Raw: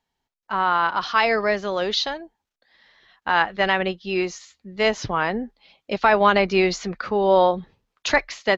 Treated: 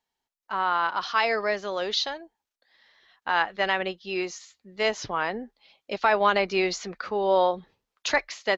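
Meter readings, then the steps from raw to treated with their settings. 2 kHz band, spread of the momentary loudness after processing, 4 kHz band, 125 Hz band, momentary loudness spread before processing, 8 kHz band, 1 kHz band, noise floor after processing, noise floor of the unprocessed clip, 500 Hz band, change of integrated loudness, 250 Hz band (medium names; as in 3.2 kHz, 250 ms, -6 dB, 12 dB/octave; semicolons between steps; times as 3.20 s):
-4.5 dB, 14 LU, -3.5 dB, -10.5 dB, 14 LU, no reading, -4.5 dB, under -85 dBFS, -84 dBFS, -5.0 dB, -4.5 dB, -8.0 dB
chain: tone controls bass -8 dB, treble +3 dB; trim -4.5 dB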